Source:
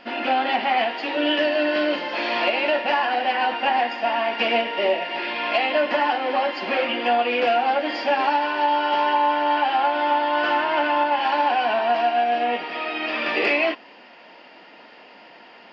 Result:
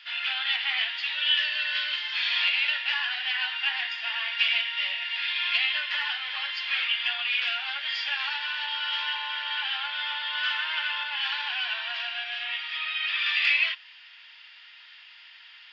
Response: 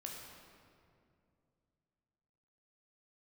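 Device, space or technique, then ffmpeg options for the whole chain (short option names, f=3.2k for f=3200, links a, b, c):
headphones lying on a table: -filter_complex "[0:a]highpass=f=1.5k:w=0.5412,highpass=f=1.5k:w=1.3066,equalizer=f=3.5k:t=o:w=0.4:g=11,asettb=1/sr,asplit=3[a][b][c];[a]atrim=end=12.784[d];[b]atrim=start=12.78:end=13.19,asetpts=PTS-STARTPTS,afade=t=in:d=0.004:c=qsin,afade=t=out:st=0.406:d=0.004:c=qsin,lowpass=5k[e];[c]atrim=start=13.186[f];[d][e]acrossfade=d=0.004:c1=hsin:c2=qsin[g];[g][f]acrossfade=d=0.004:c1=qsin:c2=hsin,volume=-2dB"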